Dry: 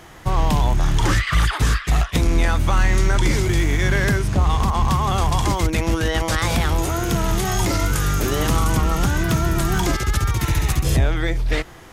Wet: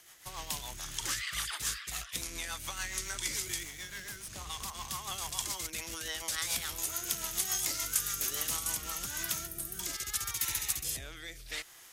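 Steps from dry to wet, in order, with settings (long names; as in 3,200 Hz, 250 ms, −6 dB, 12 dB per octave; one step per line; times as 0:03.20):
first-order pre-emphasis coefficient 0.97
0:03.63–0:04.30: tube saturation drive 37 dB, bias 0.7
0:09.47–0:09.79: gain on a spectral selection 740–8,000 Hz −9 dB
rotating-speaker cabinet horn 7 Hz, later 0.7 Hz, at 0:08.46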